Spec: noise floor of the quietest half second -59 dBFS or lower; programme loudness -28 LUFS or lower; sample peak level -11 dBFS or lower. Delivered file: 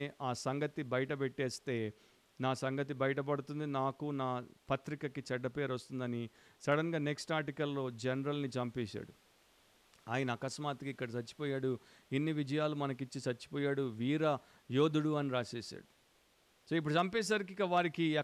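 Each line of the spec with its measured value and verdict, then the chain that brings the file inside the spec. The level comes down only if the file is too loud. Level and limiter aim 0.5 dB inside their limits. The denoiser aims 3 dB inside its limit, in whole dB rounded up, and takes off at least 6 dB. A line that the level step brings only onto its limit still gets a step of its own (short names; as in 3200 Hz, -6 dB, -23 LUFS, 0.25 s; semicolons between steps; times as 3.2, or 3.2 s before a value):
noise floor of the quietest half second -70 dBFS: OK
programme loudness -37.0 LUFS: OK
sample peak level -20.0 dBFS: OK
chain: none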